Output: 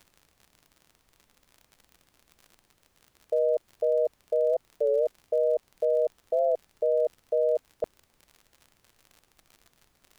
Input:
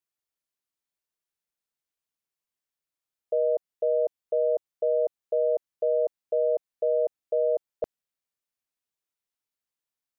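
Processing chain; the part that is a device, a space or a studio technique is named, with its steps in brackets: warped LP (record warp 33 1/3 rpm, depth 160 cents; crackle 55/s -40 dBFS; pink noise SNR 39 dB)

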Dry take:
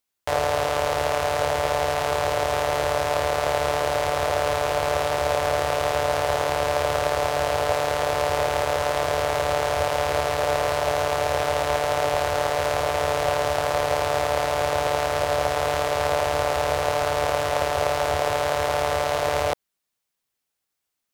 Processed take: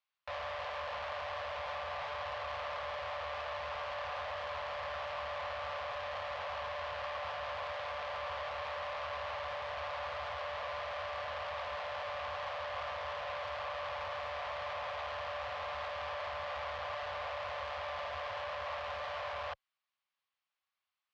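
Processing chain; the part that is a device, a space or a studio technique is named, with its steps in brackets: scooped metal amplifier (tube stage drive 36 dB, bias 0.75; speaker cabinet 91–3800 Hz, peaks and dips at 140 Hz -8 dB, 340 Hz -9 dB, 550 Hz +8 dB, 790 Hz +4 dB, 1100 Hz +10 dB, 3700 Hz -3 dB; passive tone stack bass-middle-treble 10-0-10); gain +5 dB

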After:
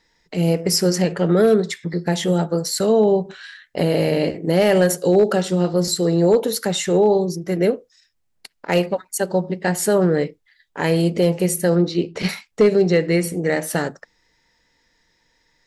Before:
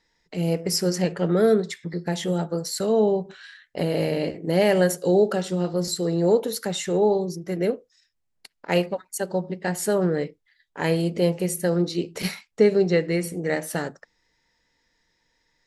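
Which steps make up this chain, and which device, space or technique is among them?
clipper into limiter (hard clip -11 dBFS, distortion -27 dB; limiter -13.5 dBFS, peak gain reduction 2.5 dB); 11.75–12.29 air absorption 110 m; gain +6 dB

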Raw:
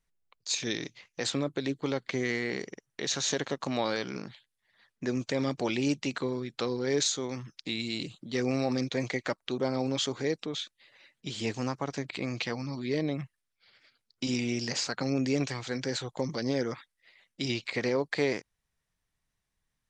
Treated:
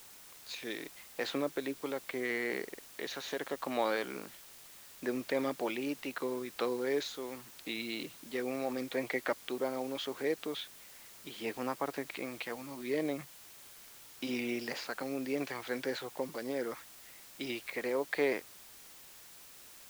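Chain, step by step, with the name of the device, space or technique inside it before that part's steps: shortwave radio (BPF 320–2800 Hz; tremolo 0.76 Hz, depth 40%; white noise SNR 16 dB)

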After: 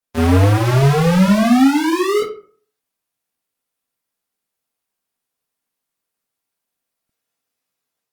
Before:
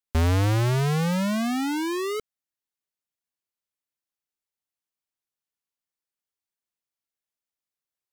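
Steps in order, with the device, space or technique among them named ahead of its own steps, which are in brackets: far-field microphone of a smart speaker (reverb RT60 0.45 s, pre-delay 17 ms, DRR -9 dB; HPF 140 Hz 12 dB/oct; AGC gain up to 4.5 dB; Opus 32 kbps 48000 Hz)

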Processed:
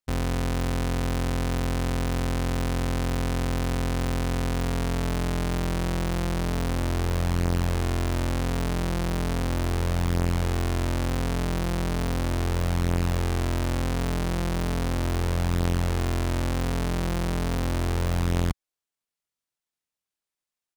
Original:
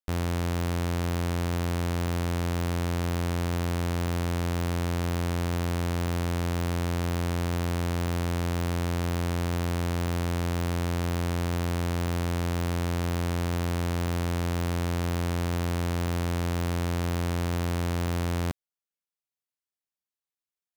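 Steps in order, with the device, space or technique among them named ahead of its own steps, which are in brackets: octave pedal (harmoniser -12 st 0 dB)

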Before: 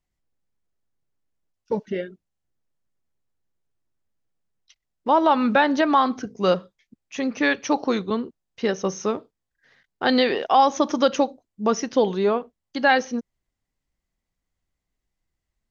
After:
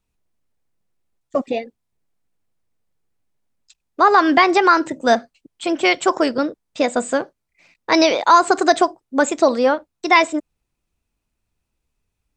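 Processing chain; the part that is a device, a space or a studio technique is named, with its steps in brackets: nightcore (varispeed +27%); gain +5 dB

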